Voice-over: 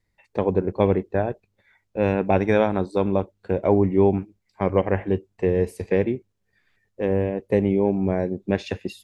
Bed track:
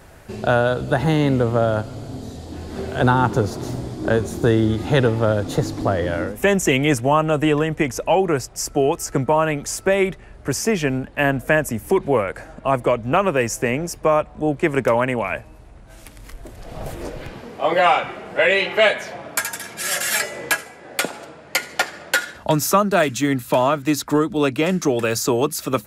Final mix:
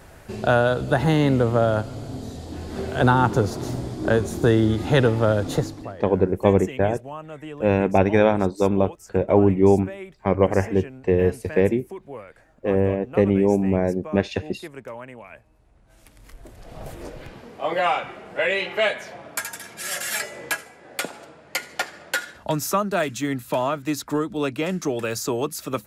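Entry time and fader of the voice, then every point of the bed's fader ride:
5.65 s, +2.0 dB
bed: 0:05.56 −1 dB
0:05.98 −19 dB
0:15.29 −19 dB
0:16.42 −6 dB

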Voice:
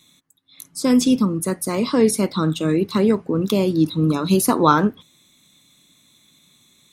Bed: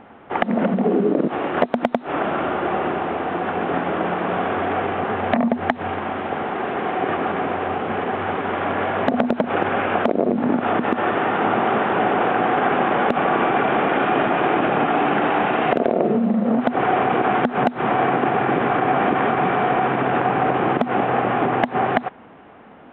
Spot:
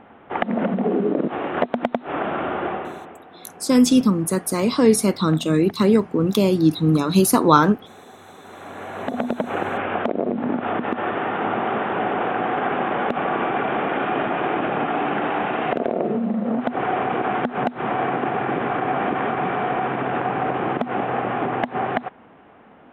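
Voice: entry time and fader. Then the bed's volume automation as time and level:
2.85 s, +1.0 dB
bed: 0:02.66 −2.5 dB
0:03.26 −21 dB
0:08.32 −21 dB
0:09.28 −4 dB

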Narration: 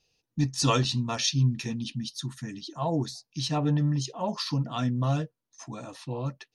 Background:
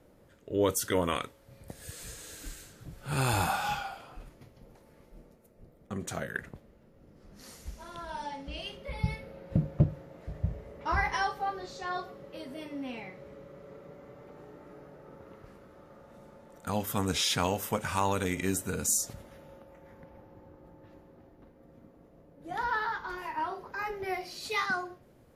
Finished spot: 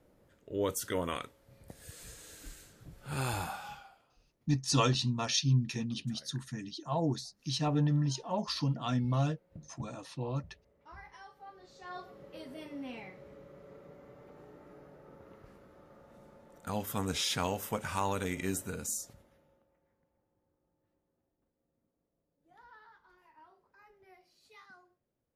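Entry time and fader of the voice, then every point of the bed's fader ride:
4.10 s, −3.5 dB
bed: 0:03.26 −5.5 dB
0:04.16 −22.5 dB
0:11.23 −22.5 dB
0:12.22 −4 dB
0:18.62 −4 dB
0:20.04 −26 dB

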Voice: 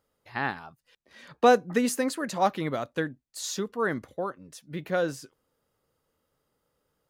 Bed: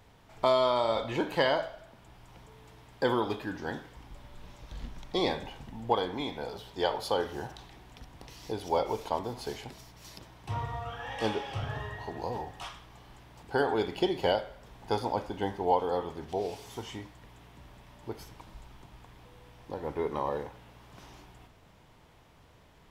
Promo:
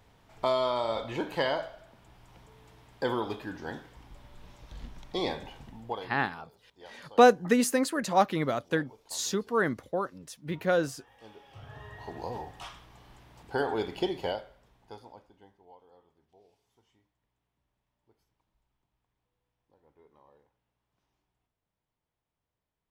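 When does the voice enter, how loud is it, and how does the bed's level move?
5.75 s, +1.0 dB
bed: 0:05.68 −2.5 dB
0:06.55 −22 dB
0:11.25 −22 dB
0:12.10 −2 dB
0:14.08 −2 dB
0:15.68 −29.5 dB

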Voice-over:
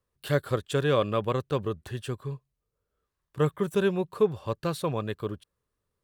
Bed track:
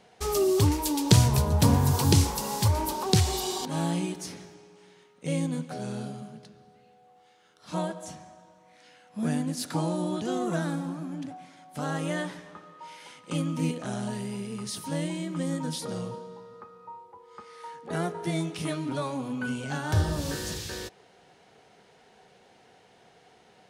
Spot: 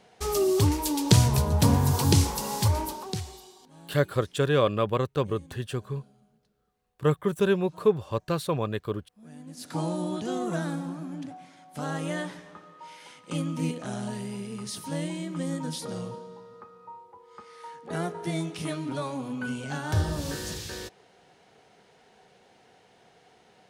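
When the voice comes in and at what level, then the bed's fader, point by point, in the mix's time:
3.65 s, +1.5 dB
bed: 0:02.76 0 dB
0:03.55 −22 dB
0:09.25 −22 dB
0:09.80 −1 dB

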